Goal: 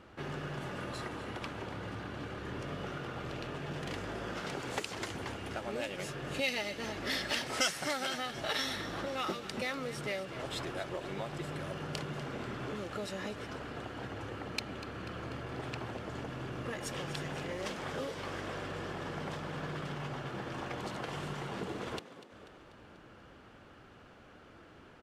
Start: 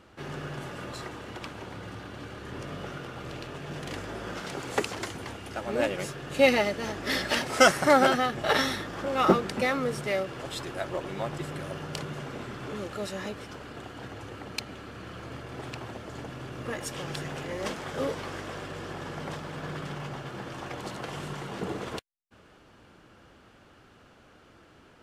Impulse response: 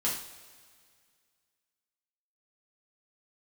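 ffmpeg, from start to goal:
-filter_complex "[0:a]asettb=1/sr,asplit=3[s0][s1][s2];[s0]atrim=end=0.804[s3];[s1]atrim=start=0.8:end=1.45,asetpts=PTS-STARTPTS,afade=t=in:d=0.004:c=qsin,afade=t=out:st=0.646:d=0.004:c=qsin,equalizer=f=10000:w=6:g=7.5[s4];[s2]atrim=start=1.446[s5];[s3][s4]acrossfade=d=0.004:c1=hsin:c2=qsin[s6];[s6][s5]acrossfade=d=0.004:c1=qsin:c2=hsin,acrossover=split=2600[s7][s8];[s7]acompressor=threshold=0.0158:ratio=6[s9];[s8]highshelf=f=4300:g=-7.5[s10];[s9][s10]amix=inputs=2:normalize=0,asplit=7[s11][s12][s13][s14][s15][s16][s17];[s12]adelay=244,afreqshift=45,volume=0.188[s18];[s13]adelay=488,afreqshift=90,volume=0.11[s19];[s14]adelay=732,afreqshift=135,volume=0.0631[s20];[s15]adelay=976,afreqshift=180,volume=0.0367[s21];[s16]adelay=1220,afreqshift=225,volume=0.0214[s22];[s17]adelay=1464,afreqshift=270,volume=0.0123[s23];[s11][s18][s19][s20][s21][s22][s23]amix=inputs=7:normalize=0"

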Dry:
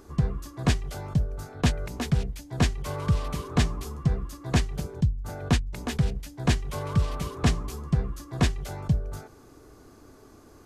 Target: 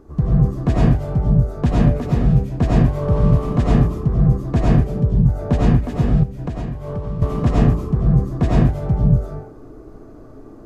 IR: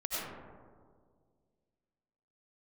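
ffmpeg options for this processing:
-filter_complex "[1:a]atrim=start_sample=2205,afade=t=out:st=0.3:d=0.01,atrim=end_sample=13671[s0];[0:a][s0]afir=irnorm=-1:irlink=0,asettb=1/sr,asplit=3[s1][s2][s3];[s1]atrim=end=6.234[s4];[s2]atrim=start=6.23:end=7.22,asetpts=PTS-STARTPTS,afade=t=in:d=0.004:c=qsin,afade=t=out:st=0.986:d=0.004:c=qsin,acompressor=threshold=0.0355:ratio=16[s5];[s3]atrim=start=7.216[s6];[s4][s5]acrossfade=d=0.004:c1=hsin:c2=qsin[s7];[s7][s6]acrossfade=d=0.004:c1=qsin:c2=hsin,tiltshelf=f=1400:g=9.5,volume=0.891"

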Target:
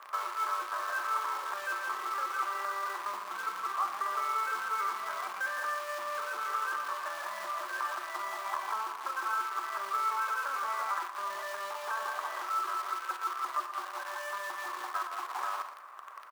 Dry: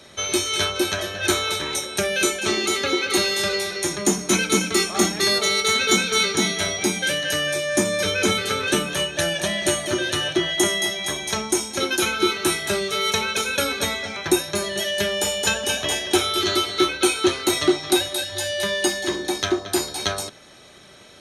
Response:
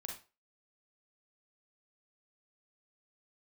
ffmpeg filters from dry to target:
-filter_complex "[0:a]lowpass=f=1400:w=0.5412,lowpass=f=1400:w=1.3066,acompressor=threshold=0.0316:ratio=2.5,alimiter=level_in=1.88:limit=0.0631:level=0:latency=1:release=332,volume=0.531,acrusher=bits=8:dc=4:mix=0:aa=0.000001,atempo=1.3,highpass=f=1100:t=q:w=6.6,asplit=2[s0][s1];[s1]adelay=116.6,volume=0.282,highshelf=f=4000:g=-2.62[s2];[s0][s2]amix=inputs=2:normalize=0,asplit=2[s3][s4];[1:a]atrim=start_sample=2205[s5];[s4][s5]afir=irnorm=-1:irlink=0,volume=0.794[s6];[s3][s6]amix=inputs=2:normalize=0,volume=0.794"

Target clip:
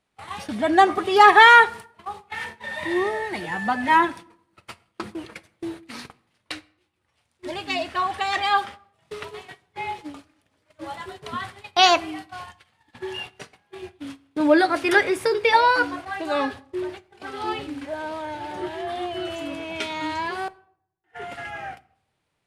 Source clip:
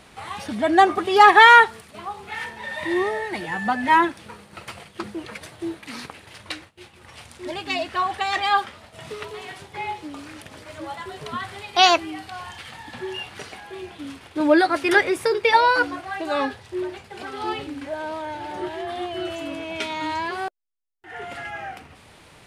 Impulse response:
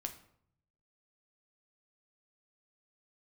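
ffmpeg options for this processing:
-filter_complex "[0:a]agate=range=0.0501:threshold=0.0178:ratio=16:detection=peak,asplit=2[s0][s1];[1:a]atrim=start_sample=2205[s2];[s1][s2]afir=irnorm=-1:irlink=0,volume=0.531[s3];[s0][s3]amix=inputs=2:normalize=0,volume=0.668"

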